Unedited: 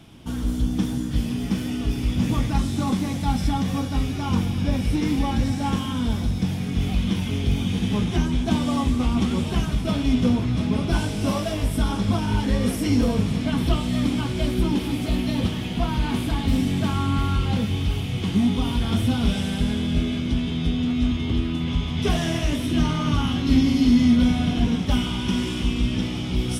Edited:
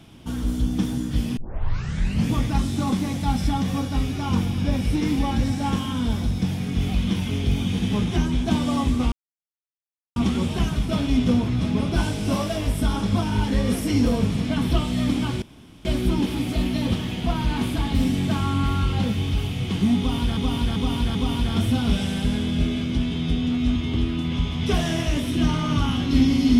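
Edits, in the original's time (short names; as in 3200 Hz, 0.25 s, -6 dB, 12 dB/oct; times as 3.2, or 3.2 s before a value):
1.37 tape start 0.93 s
9.12 insert silence 1.04 s
14.38 insert room tone 0.43 s
18.51–18.9 loop, 4 plays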